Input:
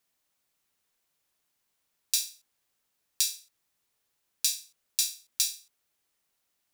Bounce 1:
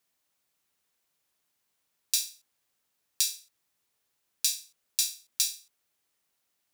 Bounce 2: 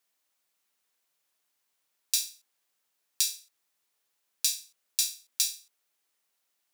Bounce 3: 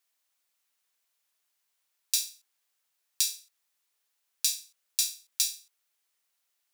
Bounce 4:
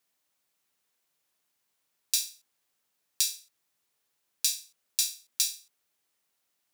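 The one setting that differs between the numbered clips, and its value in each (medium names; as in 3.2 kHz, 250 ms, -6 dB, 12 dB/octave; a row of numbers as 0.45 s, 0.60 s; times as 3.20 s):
high-pass, cutoff frequency: 45 Hz, 390 Hz, 1 kHz, 130 Hz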